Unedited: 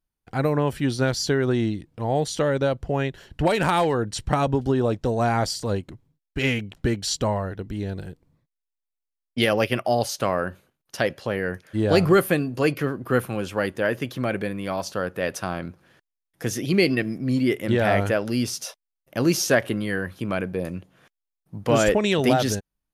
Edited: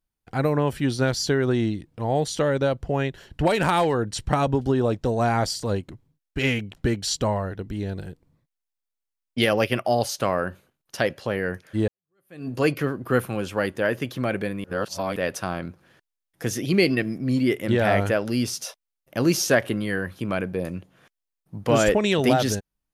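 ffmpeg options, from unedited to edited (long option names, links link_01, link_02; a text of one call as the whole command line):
ffmpeg -i in.wav -filter_complex "[0:a]asplit=4[link_01][link_02][link_03][link_04];[link_01]atrim=end=11.88,asetpts=PTS-STARTPTS,afade=type=out:start_time=11.876:duration=0.004:curve=hsin[link_05];[link_02]atrim=start=11.88:end=14.642,asetpts=PTS-STARTPTS,afade=type=in:duration=0.6:curve=exp[link_06];[link_03]atrim=start=14.638:end=15.162,asetpts=PTS-STARTPTS,areverse[link_07];[link_04]atrim=start=15.158[link_08];[link_05][link_06]concat=n=2:v=0:a=1[link_09];[link_09][link_07]acrossfade=duration=0.004:curve1=hsin:curve2=hsin[link_10];[link_10][link_08]acrossfade=duration=0.004:curve1=hsin:curve2=hsin" out.wav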